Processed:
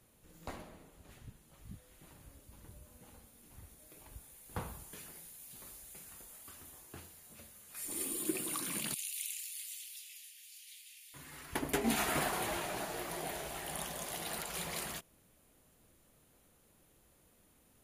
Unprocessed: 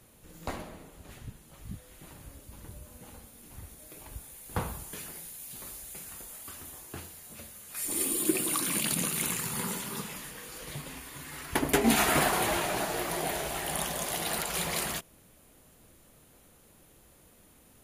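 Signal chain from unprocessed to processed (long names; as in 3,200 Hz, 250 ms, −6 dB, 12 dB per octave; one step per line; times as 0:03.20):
0:08.94–0:11.14: Butterworth high-pass 2,400 Hz 36 dB per octave
level −8.5 dB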